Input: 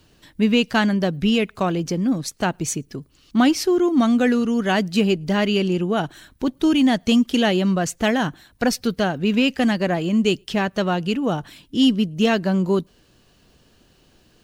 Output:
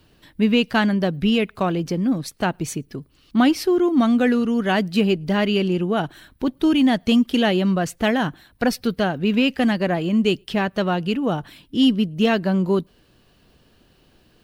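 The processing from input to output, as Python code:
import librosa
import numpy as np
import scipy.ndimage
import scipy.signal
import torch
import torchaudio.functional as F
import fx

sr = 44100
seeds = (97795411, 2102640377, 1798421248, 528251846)

y = fx.peak_eq(x, sr, hz=6700.0, db=-8.0, octaves=0.72)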